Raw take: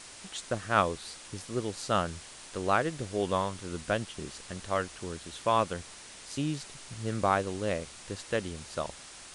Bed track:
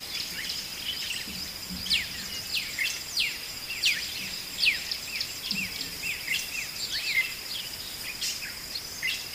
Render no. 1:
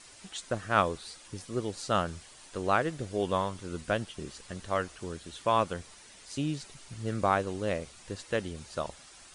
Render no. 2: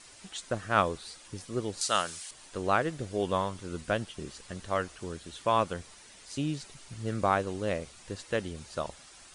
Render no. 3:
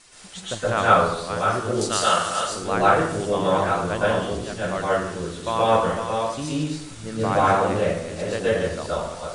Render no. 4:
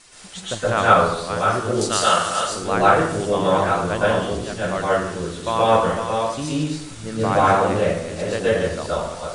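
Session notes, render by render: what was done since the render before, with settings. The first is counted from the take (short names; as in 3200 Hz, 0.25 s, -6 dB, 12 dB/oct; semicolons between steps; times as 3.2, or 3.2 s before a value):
denoiser 8 dB, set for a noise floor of -49 dBFS
1.81–2.31 tilt +4 dB/oct
reverse delay 0.527 s, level -6.5 dB; plate-style reverb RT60 0.77 s, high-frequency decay 0.7×, pre-delay 0.105 s, DRR -8 dB
gain +2.5 dB; limiter -1 dBFS, peak gain reduction 1.5 dB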